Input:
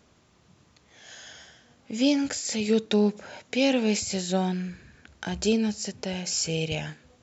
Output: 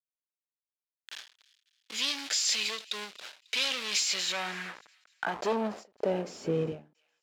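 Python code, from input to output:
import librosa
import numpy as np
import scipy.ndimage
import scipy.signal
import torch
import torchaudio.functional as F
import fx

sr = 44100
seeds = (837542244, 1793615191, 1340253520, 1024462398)

y = fx.delta_hold(x, sr, step_db=-37.5)
y = scipy.signal.sosfilt(scipy.signal.butter(2, 47.0, 'highpass', fs=sr, output='sos'), y)
y = fx.low_shelf(y, sr, hz=140.0, db=-12.0)
y = fx.leveller(y, sr, passes=3)
y = np.clip(y, -10.0 ** (-18.5 / 20.0), 10.0 ** (-18.5 / 20.0))
y = fx.filter_sweep_bandpass(y, sr, from_hz=3700.0, to_hz=280.0, start_s=3.94, end_s=6.6, q=1.4)
y = fx.echo_wet_highpass(y, sr, ms=272, feedback_pct=41, hz=2300.0, wet_db=-22.0)
y = fx.end_taper(y, sr, db_per_s=170.0)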